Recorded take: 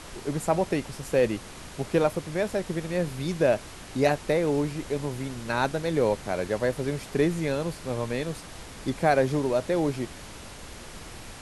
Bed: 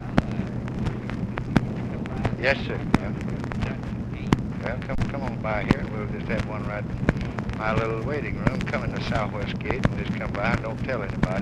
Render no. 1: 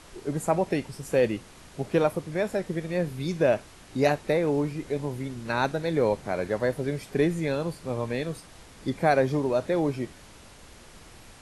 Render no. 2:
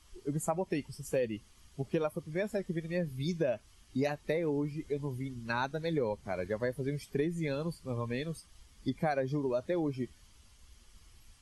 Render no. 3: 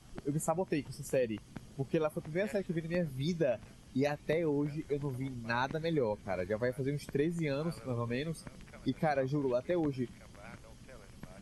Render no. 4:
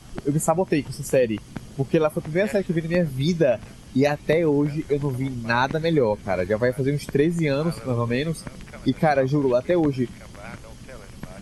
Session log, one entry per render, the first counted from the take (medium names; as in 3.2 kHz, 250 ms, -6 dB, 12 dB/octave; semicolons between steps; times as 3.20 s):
noise print and reduce 7 dB
expander on every frequency bin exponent 1.5; compression 6:1, threshold -28 dBFS, peak gain reduction 9.5 dB
add bed -26.5 dB
trim +12 dB